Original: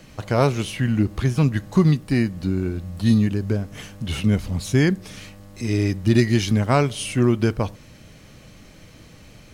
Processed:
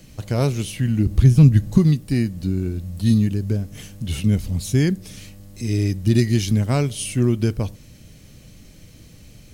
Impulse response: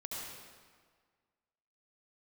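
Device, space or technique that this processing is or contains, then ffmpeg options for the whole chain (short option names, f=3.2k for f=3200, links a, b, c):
smiley-face EQ: -filter_complex "[0:a]lowshelf=f=170:g=5,equalizer=f=1.1k:t=o:w=1.9:g=-8,highshelf=f=7.5k:g=8.5,asettb=1/sr,asplit=3[a][b][c];[a]atrim=end=1.064[d];[b]atrim=start=1.06:end=1.78,asetpts=PTS-STARTPTS,afade=t=in:d=0.004:c=qsin,afade=t=out:st=0.716:d=0.004:c=qsin,lowshelf=f=220:g=10.5[e];[c]atrim=start=1.776[f];[d][e]acrossfade=d=0.004:c1=hsin:c2=qsin[g];[g][f]acrossfade=d=0.004:c1=qsin:c2=hsin,volume=-1.5dB"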